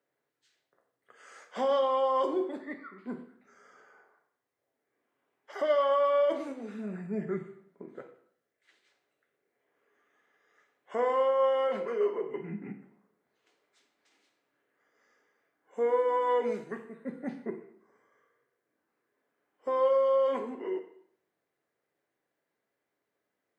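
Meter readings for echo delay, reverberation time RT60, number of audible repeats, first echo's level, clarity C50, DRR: no echo audible, 0.65 s, no echo audible, no echo audible, 10.5 dB, 5.5 dB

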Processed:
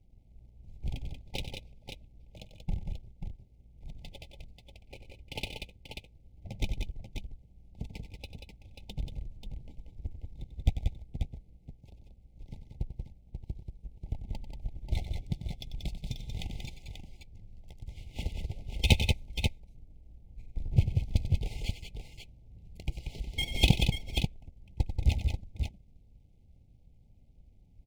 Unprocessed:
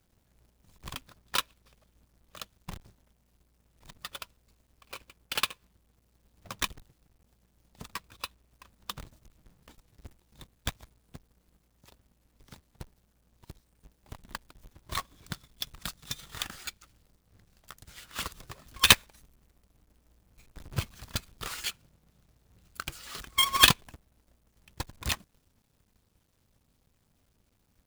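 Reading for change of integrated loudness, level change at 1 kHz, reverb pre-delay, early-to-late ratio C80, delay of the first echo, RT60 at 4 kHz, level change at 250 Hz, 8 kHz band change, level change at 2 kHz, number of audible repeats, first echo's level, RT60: −5.5 dB, −13.5 dB, no reverb audible, no reverb audible, 93 ms, no reverb audible, +5.5 dB, −13.5 dB, −8.0 dB, 3, −11.0 dB, no reverb audible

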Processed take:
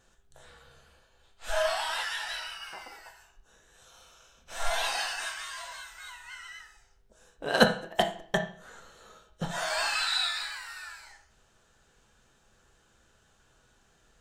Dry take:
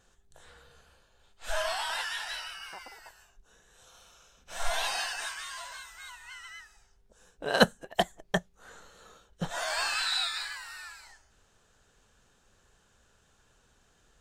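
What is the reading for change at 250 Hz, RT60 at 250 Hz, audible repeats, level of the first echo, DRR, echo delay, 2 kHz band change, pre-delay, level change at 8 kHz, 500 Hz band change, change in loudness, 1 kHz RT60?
+1.0 dB, 0.45 s, no echo audible, no echo audible, 4.0 dB, no echo audible, +1.5 dB, 6 ms, 0.0 dB, +2.5 dB, +1.5 dB, 0.50 s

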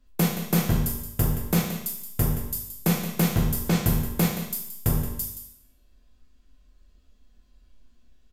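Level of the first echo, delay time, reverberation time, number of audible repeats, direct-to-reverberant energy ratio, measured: −12.0 dB, 174 ms, 0.80 s, 1, −2.5 dB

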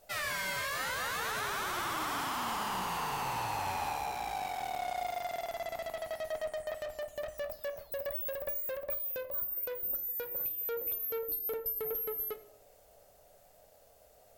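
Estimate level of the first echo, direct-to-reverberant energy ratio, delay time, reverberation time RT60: no echo audible, 7.5 dB, no echo audible, 0.60 s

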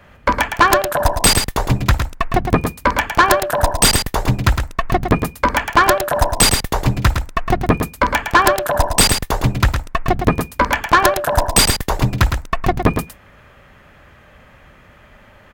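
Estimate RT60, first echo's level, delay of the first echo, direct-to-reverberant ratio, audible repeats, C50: no reverb audible, −7.0 dB, 110 ms, no reverb audible, 1, no reverb audible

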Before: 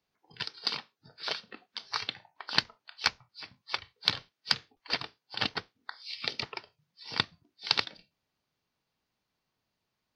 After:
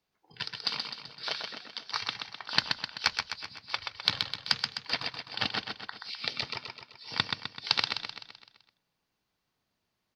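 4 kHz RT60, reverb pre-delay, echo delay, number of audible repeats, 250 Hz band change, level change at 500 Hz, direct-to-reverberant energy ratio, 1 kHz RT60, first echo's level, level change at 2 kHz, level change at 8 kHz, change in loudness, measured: no reverb audible, no reverb audible, 128 ms, 6, +0.5 dB, −0.5 dB, no reverb audible, no reverb audible, −5.0 dB, +1.5 dB, +1.5 dB, +1.0 dB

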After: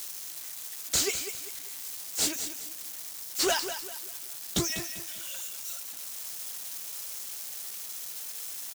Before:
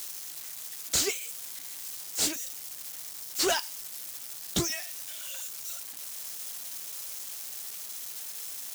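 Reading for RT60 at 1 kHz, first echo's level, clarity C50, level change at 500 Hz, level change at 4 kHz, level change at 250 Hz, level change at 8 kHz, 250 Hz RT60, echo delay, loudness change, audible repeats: no reverb audible, −10.0 dB, no reverb audible, +0.5 dB, +0.5 dB, +0.5 dB, +0.5 dB, no reverb audible, 197 ms, +0.5 dB, 3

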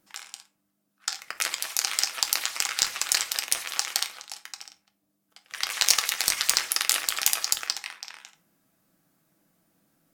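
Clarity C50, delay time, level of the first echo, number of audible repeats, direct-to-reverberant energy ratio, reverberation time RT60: 15.5 dB, no echo audible, no echo audible, no echo audible, 6.5 dB, 0.40 s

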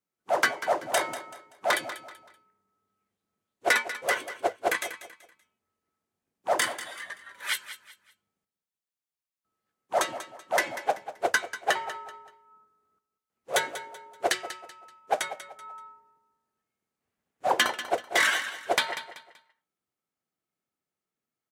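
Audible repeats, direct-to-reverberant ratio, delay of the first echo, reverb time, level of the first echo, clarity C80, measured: 3, no reverb audible, 191 ms, no reverb audible, −13.0 dB, no reverb audible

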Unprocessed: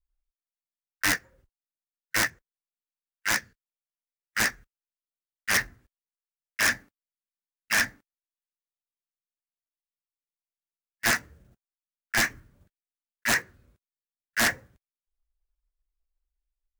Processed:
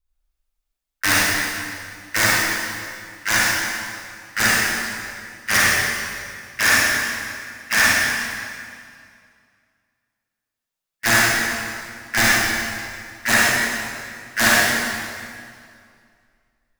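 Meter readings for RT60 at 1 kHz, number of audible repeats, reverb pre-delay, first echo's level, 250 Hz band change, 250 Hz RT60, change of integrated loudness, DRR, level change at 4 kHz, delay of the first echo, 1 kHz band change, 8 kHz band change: 2.2 s, no echo audible, 36 ms, no echo audible, +11.0 dB, 2.3 s, +8.0 dB, −6.5 dB, +10.5 dB, no echo audible, +11.5 dB, +10.5 dB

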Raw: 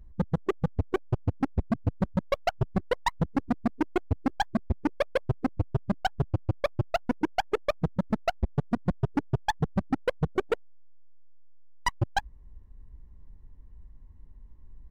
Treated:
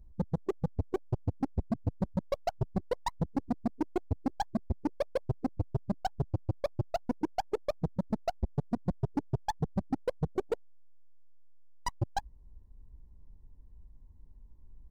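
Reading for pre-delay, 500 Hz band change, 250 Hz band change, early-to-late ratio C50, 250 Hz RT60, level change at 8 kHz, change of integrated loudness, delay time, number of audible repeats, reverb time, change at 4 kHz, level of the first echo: no reverb audible, −4.5 dB, −4.5 dB, no reverb audible, no reverb audible, −4.5 dB, −5.0 dB, no echo audible, no echo audible, no reverb audible, −9.0 dB, no echo audible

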